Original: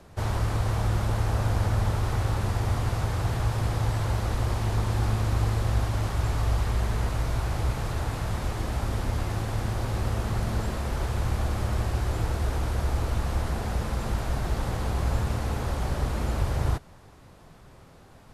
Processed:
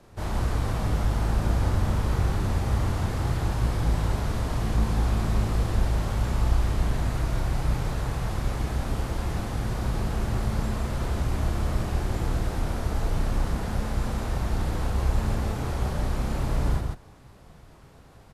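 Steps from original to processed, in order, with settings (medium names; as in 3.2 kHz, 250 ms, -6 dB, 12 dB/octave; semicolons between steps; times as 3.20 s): octave divider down 1 oct, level -1 dB; loudspeakers at several distances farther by 11 m -2 dB, 57 m -3 dB; trim -4 dB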